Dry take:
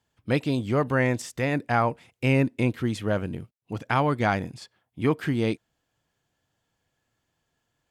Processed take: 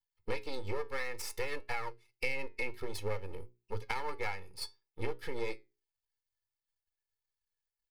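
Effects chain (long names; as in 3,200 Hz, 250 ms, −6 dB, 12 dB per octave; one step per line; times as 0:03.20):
spectral dynamics exaggerated over time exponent 1.5
half-wave rectification
low-shelf EQ 450 Hz −8 dB
comb filter 2.3 ms, depth 80%
downward compressor 12 to 1, threshold −43 dBFS, peak gain reduction 22 dB
EQ curve with evenly spaced ripples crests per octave 0.89, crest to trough 8 dB
flanger 0.57 Hz, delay 7.9 ms, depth 3.3 ms, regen +77%
mains-hum notches 60/120/180/240/300/360/420 Hz
level +13.5 dB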